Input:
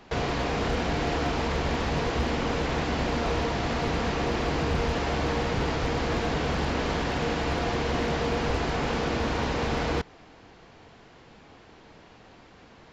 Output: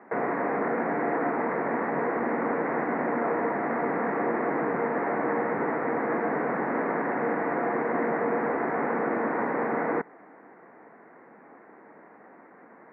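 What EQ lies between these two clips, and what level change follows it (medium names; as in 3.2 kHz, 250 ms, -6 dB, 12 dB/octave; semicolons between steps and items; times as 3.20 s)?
high-pass 210 Hz 24 dB/octave; elliptic low-pass 2 kHz, stop band 40 dB; +2.5 dB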